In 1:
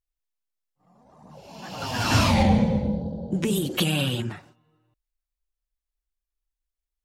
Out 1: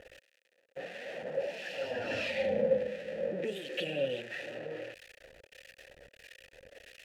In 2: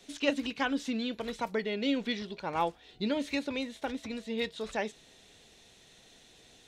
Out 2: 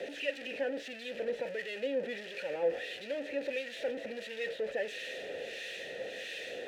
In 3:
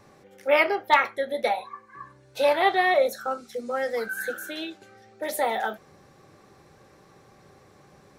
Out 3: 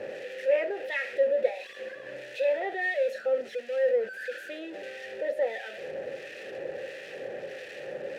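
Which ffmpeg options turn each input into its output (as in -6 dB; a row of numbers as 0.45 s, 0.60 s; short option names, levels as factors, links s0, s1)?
-filter_complex "[0:a]aeval=exprs='val(0)+0.5*0.0841*sgn(val(0))':c=same,asplit=3[s0][s1][s2];[s0]bandpass=f=530:t=q:w=8,volume=1[s3];[s1]bandpass=f=1840:t=q:w=8,volume=0.501[s4];[s2]bandpass=f=2480:t=q:w=8,volume=0.355[s5];[s3][s4][s5]amix=inputs=3:normalize=0,acrossover=split=1400[s6][s7];[s6]aeval=exprs='val(0)*(1-0.7/2+0.7/2*cos(2*PI*1.5*n/s))':c=same[s8];[s7]aeval=exprs='val(0)*(1-0.7/2-0.7/2*cos(2*PI*1.5*n/s))':c=same[s9];[s8][s9]amix=inputs=2:normalize=0,volume=1.41"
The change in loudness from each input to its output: -11.5 LU, -3.5 LU, -6.0 LU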